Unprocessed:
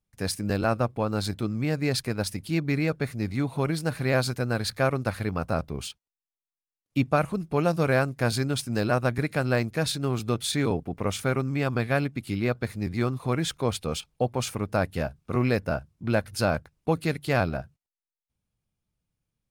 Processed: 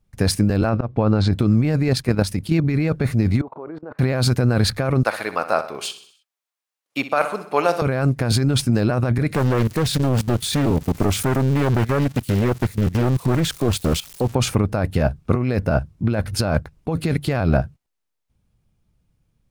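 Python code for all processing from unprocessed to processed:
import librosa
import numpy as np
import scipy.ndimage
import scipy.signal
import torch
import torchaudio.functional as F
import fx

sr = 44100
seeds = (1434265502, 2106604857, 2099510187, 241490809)

y = fx.chain(x, sr, fx.air_absorb(metres=130.0),
    fx.auto_swell(attack_ms=212.0), at=(0.69, 1.33))
y = fx.chain(y, sr, fx.highpass(hz=59.0, slope=6),
    fx.level_steps(step_db=9), at=(1.88, 2.64))
y = fx.chain(y, sr, fx.cheby1_bandpass(low_hz=360.0, high_hz=1200.0, order=2),
    fx.level_steps(step_db=23), at=(3.41, 3.99))
y = fx.chain(y, sr, fx.highpass(hz=670.0, slope=12),
    fx.echo_feedback(ms=63, feedback_pct=52, wet_db=-13.0), at=(5.03, 7.82))
y = fx.chain(y, sr, fx.crossing_spikes(level_db=-29.0),
    fx.level_steps(step_db=16),
    fx.doppler_dist(depth_ms=0.81), at=(9.34, 14.35))
y = fx.tilt_eq(y, sr, slope=-1.5)
y = fx.over_compress(y, sr, threshold_db=-26.0, ratio=-1.0)
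y = y * 10.0 ** (9.0 / 20.0)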